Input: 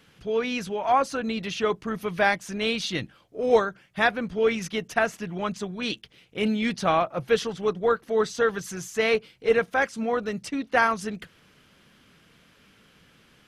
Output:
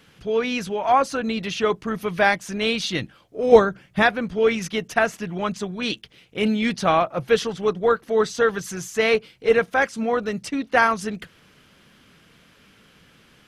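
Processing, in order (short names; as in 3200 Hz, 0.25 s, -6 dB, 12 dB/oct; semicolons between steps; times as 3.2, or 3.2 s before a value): 3.52–4.03 low shelf 440 Hz +8.5 dB; gain +3.5 dB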